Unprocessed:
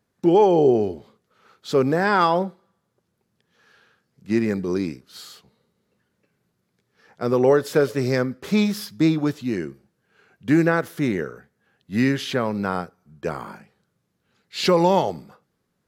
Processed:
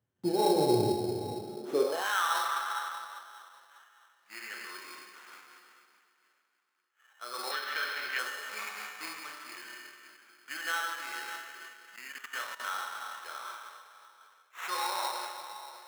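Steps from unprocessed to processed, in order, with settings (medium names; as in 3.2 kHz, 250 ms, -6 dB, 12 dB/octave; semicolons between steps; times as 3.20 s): backward echo that repeats 299 ms, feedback 50%, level -12.5 dB; feedback comb 120 Hz, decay 0.76 s, harmonics odd, mix 80%; plate-style reverb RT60 2.2 s, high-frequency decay 0.95×, DRR -2 dB; 11.96–12.60 s: level held to a coarse grid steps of 16 dB; sample-rate reducer 4.7 kHz, jitter 0%; 2.45–4.79 s: dynamic bell 1.6 kHz, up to +4 dB, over -48 dBFS, Q 0.94; high-pass sweep 92 Hz -> 1.3 kHz, 1.42–2.10 s; 7.51–8.19 s: graphic EQ 250/500/1000/2000/4000/8000 Hz +4/-4/-4/+9/+4/-9 dB; random flutter of the level, depth 50%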